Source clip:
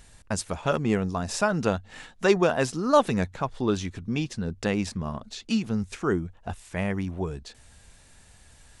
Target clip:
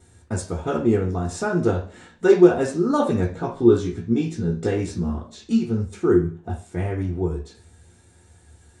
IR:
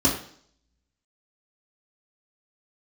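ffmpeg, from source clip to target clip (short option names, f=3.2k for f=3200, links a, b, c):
-filter_complex "[0:a]asettb=1/sr,asplit=3[a][b][c];[a]atrim=end=3.344[d];[b]atrim=start=3.34:end=5.16,asetpts=PTS-STARTPTS,afade=t=in:d=0.004:c=qsin,afade=t=out:st=1.816:d=0.004:c=qsin,asplit=2[e][f];[f]adelay=17,volume=-5dB[g];[e][g]amix=inputs=2:normalize=0,atrim=end_sample=80262[h];[c]atrim=start=5.156[i];[d][h]acrossfade=d=0.004:c1=hsin:c2=qsin[j];[j][i]acrossfade=d=0.004:c1=qsin:c2=hsin[k];[1:a]atrim=start_sample=2205,asetrate=57330,aresample=44100[l];[k][l]afir=irnorm=-1:irlink=0,volume=-15dB"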